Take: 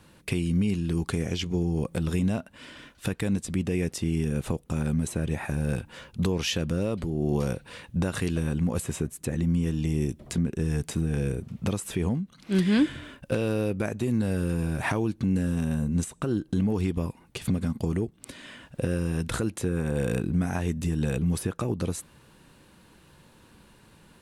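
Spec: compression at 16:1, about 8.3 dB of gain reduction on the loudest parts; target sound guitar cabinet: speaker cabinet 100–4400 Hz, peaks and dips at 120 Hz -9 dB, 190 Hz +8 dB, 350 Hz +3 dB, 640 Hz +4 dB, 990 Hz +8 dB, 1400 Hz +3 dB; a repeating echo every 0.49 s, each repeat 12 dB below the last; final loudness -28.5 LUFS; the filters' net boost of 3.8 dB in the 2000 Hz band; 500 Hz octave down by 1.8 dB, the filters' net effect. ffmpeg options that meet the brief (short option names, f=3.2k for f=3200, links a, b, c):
-af "equalizer=f=500:t=o:g=-5.5,equalizer=f=2k:t=o:g=3.5,acompressor=threshold=-28dB:ratio=16,highpass=100,equalizer=f=120:t=q:w=4:g=-9,equalizer=f=190:t=q:w=4:g=8,equalizer=f=350:t=q:w=4:g=3,equalizer=f=640:t=q:w=4:g=4,equalizer=f=990:t=q:w=4:g=8,equalizer=f=1.4k:t=q:w=4:g=3,lowpass=f=4.4k:w=0.5412,lowpass=f=4.4k:w=1.3066,aecho=1:1:490|980|1470:0.251|0.0628|0.0157,volume=3.5dB"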